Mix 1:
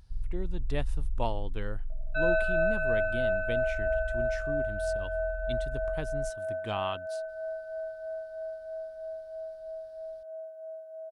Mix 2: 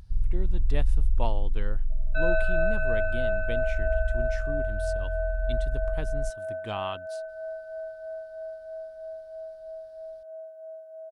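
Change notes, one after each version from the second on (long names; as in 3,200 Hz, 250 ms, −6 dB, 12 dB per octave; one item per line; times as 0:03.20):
first sound +8.5 dB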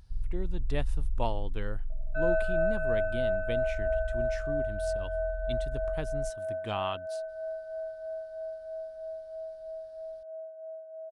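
first sound −7.5 dB
second sound: add low-pass filter 1,200 Hz 12 dB per octave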